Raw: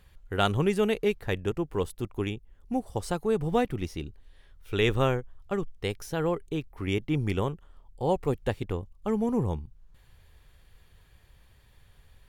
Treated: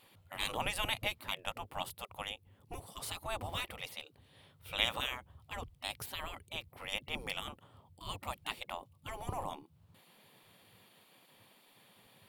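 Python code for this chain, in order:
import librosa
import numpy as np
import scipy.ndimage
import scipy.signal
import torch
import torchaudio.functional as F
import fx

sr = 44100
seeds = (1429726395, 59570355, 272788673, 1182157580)

y = fx.spec_gate(x, sr, threshold_db=-20, keep='weak')
y = fx.graphic_eq_15(y, sr, hz=(100, 400, 1600, 6300), db=(10, -4, -8, -9))
y = F.gain(torch.from_numpy(y), 6.0).numpy()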